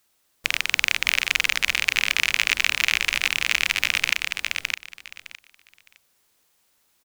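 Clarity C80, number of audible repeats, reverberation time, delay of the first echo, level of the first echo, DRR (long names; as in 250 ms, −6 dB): no reverb audible, 3, no reverb audible, 611 ms, −4.0 dB, no reverb audible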